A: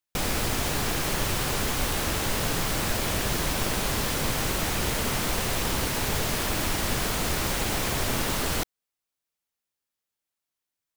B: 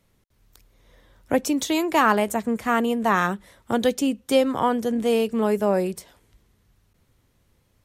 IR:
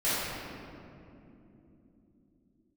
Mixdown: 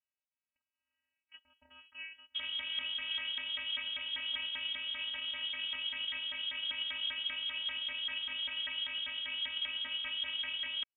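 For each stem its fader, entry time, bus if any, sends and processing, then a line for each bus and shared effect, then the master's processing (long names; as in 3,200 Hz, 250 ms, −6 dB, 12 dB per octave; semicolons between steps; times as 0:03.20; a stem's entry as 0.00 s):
0.0 dB, 2.20 s, no send, brickwall limiter −20.5 dBFS, peak gain reduction 6.5 dB; auto-filter band-pass saw down 5.1 Hz 300–1,600 Hz
−16.0 dB, 0.00 s, no send, vocoder with an arpeggio as carrier minor triad, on E3, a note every 280 ms; brickwall limiter −19 dBFS, peak gain reduction 9.5 dB; elliptic high-pass filter 760 Hz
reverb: not used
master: parametric band 410 Hz +7.5 dB 2.3 octaves; phases set to zero 334 Hz; voice inversion scrambler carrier 3,600 Hz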